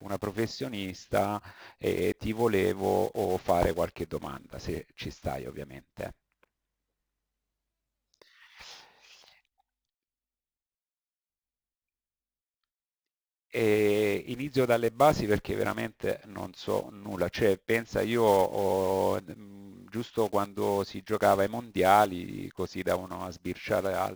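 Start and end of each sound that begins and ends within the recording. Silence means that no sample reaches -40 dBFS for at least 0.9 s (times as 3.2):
8.22–9.28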